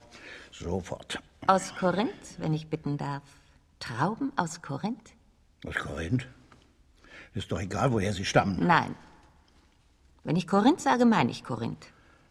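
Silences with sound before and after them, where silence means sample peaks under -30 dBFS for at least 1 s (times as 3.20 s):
6.21–7.36 s
8.93–10.27 s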